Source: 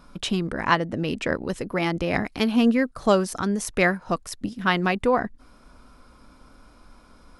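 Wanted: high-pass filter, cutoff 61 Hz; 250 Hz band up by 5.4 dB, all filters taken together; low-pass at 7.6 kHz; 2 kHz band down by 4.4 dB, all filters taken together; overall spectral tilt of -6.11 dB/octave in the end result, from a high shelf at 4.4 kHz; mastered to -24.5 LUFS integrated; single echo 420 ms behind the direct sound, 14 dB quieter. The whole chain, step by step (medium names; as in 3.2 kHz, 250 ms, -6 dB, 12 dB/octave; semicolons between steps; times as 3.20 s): high-pass 61 Hz; low-pass 7.6 kHz; peaking EQ 250 Hz +6.5 dB; peaking EQ 2 kHz -4.5 dB; treble shelf 4.4 kHz -6 dB; delay 420 ms -14 dB; trim -3 dB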